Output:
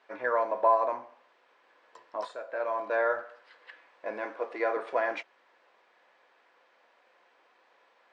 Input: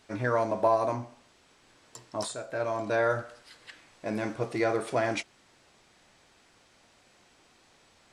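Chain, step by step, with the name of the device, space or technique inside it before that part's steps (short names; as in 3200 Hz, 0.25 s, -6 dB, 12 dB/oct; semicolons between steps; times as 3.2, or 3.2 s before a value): tin-can telephone (BPF 480–2200 Hz; small resonant body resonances 510/1000/1700 Hz, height 7 dB); 4.25–4.77 HPF 220 Hz 24 dB/oct; low shelf 180 Hz -11 dB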